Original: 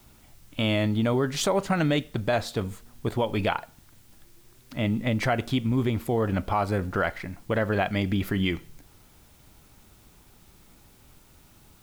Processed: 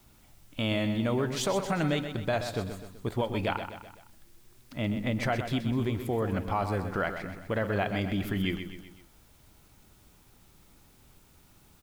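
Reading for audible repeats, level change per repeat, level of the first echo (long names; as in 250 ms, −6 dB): 4, −6.0 dB, −9.0 dB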